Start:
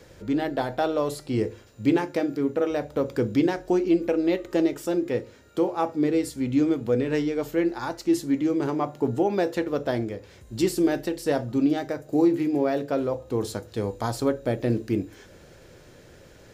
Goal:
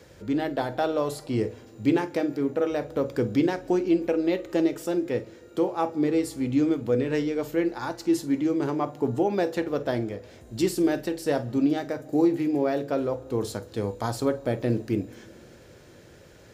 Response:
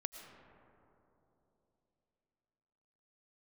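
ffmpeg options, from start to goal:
-filter_complex "[0:a]highpass=44,asplit=2[a][b];[1:a]atrim=start_sample=2205,asetrate=52920,aresample=44100,adelay=49[c];[b][c]afir=irnorm=-1:irlink=0,volume=-13.5dB[d];[a][d]amix=inputs=2:normalize=0,volume=-1dB"

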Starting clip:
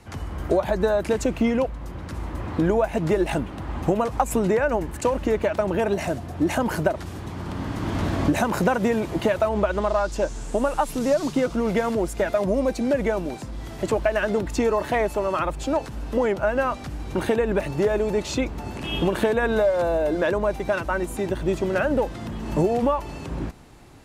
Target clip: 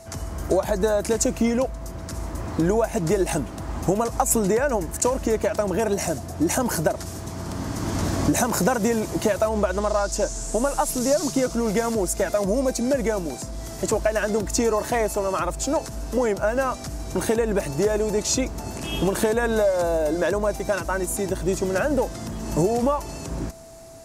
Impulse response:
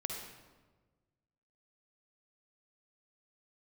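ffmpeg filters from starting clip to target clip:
-af "aeval=exprs='val(0)+0.00708*sin(2*PI*660*n/s)':c=same,highshelf=f=4.4k:t=q:w=1.5:g=10"

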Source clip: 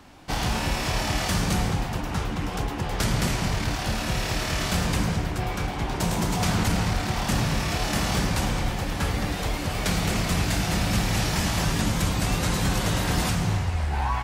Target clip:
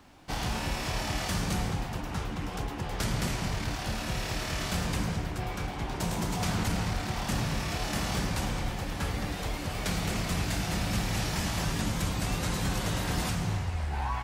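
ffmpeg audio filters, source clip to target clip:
-af "acrusher=bits=11:mix=0:aa=0.000001,volume=-6dB"

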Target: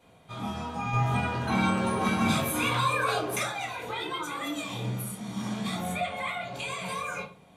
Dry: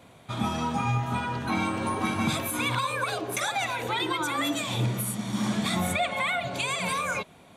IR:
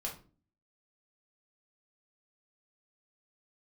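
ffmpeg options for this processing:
-filter_complex "[0:a]asettb=1/sr,asplit=3[a][b][c];[a]atrim=end=0.934[d];[b]atrim=start=0.93:end=3.43,asetpts=PTS-STARTPTS,afade=t=in:d=0.004:c=qsin,afade=t=out:st=2.496:d=0.004:c=qsin,acontrast=86[e];[c]atrim=start=3.426[f];[d][e]acrossfade=d=0.004:c1=hsin:c2=qsin[g];[g][f]acrossfade=d=0.004:c1=qsin:c2=hsin[h];[1:a]atrim=start_sample=2205,asetrate=43659,aresample=44100[i];[h][i]afir=irnorm=-1:irlink=0,volume=-6dB"

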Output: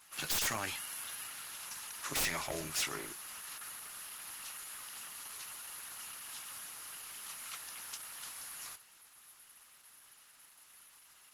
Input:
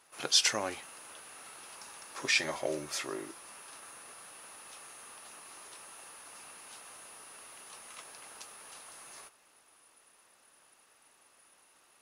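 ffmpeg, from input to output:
-filter_complex "[0:a]aeval=exprs='(tanh(11.2*val(0)+0.15)-tanh(0.15))/11.2':c=same,asetrate=46746,aresample=44100,equalizer=f=480:w=0.69:g=-15,acrossover=split=120[a][b];[b]aeval=exprs='0.0224*(abs(mod(val(0)/0.0224+3,4)-2)-1)':c=same[c];[a][c]amix=inputs=2:normalize=0,volume=7.5dB" -ar 48000 -c:a libopus -b:a 16k

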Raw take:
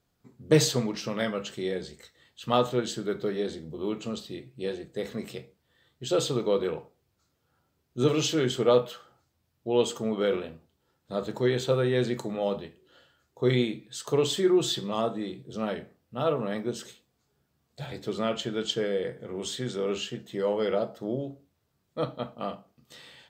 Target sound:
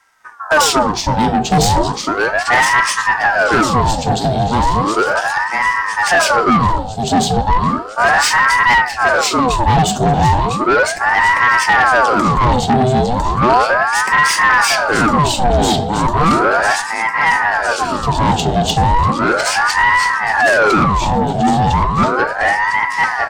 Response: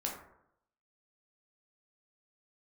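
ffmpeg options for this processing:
-filter_complex "[0:a]equalizer=f=125:t=o:w=1:g=11,equalizer=f=250:t=o:w=1:g=-10,equalizer=f=500:t=o:w=1:g=11,equalizer=f=2k:t=o:w=1:g=-11,equalizer=f=4k:t=o:w=1:g=5,equalizer=f=8k:t=o:w=1:g=7,aecho=1:1:1004|2008|3012|4016|5020|6024|7028:0.631|0.347|0.191|0.105|0.0577|0.0318|0.0175,apsyclip=9.5dB,aeval=exprs='1.12*(cos(1*acos(clip(val(0)/1.12,-1,1)))-cos(1*PI/2))+0.02*(cos(4*acos(clip(val(0)/1.12,-1,1)))-cos(4*PI/2))+0.224*(cos(5*acos(clip(val(0)/1.12,-1,1)))-cos(5*PI/2))+0.0398*(cos(8*acos(clip(val(0)/1.12,-1,1)))-cos(8*PI/2))':c=same,highshelf=f=9.2k:g=-8.5,acrossover=split=110[a][b];[b]acontrast=70[c];[a][c]amix=inputs=2:normalize=0,aeval=exprs='val(0)*sin(2*PI*870*n/s+870*0.7/0.35*sin(2*PI*0.35*n/s))':c=same,volume=-4dB"

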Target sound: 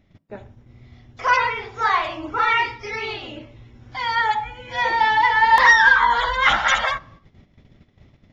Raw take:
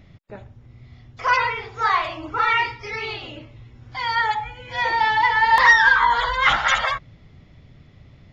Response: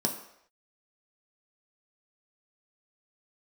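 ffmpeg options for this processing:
-filter_complex "[0:a]agate=range=-11dB:threshold=-46dB:ratio=16:detection=peak,asplit=2[a][b];[1:a]atrim=start_sample=2205,afade=t=out:st=0.35:d=0.01,atrim=end_sample=15876[c];[b][c]afir=irnorm=-1:irlink=0,volume=-20dB[d];[a][d]amix=inputs=2:normalize=0"

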